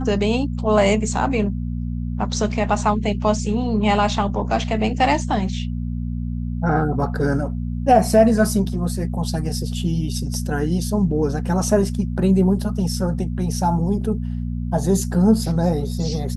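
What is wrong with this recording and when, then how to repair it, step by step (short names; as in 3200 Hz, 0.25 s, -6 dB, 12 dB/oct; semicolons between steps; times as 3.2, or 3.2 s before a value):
hum 60 Hz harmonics 4 -25 dBFS
1.19 gap 3.2 ms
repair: de-hum 60 Hz, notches 4; interpolate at 1.19, 3.2 ms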